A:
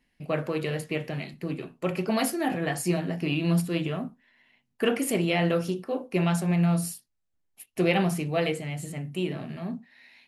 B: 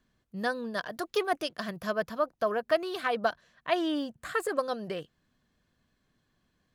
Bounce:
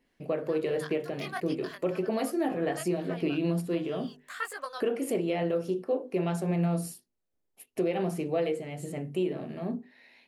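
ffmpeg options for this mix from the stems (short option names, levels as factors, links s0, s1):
-filter_complex "[0:a]equalizer=f=430:t=o:w=1.6:g=12.5,bandreject=f=50:t=h:w=6,bandreject=f=100:t=h:w=6,bandreject=f=150:t=h:w=6,bandreject=f=200:t=h:w=6,bandreject=f=250:t=h:w=6,bandreject=f=300:t=h:w=6,bandreject=f=350:t=h:w=6,bandreject=f=400:t=h:w=6,bandreject=f=450:t=h:w=6,volume=0.596,asplit=2[s0][s1];[1:a]highpass=960,flanger=delay=17:depth=6:speed=2,adelay=50,volume=1.19[s2];[s1]apad=whole_len=299859[s3];[s2][s3]sidechaincompress=threshold=0.0224:ratio=8:attack=16:release=159[s4];[s0][s4]amix=inputs=2:normalize=0,alimiter=limit=0.106:level=0:latency=1:release=457"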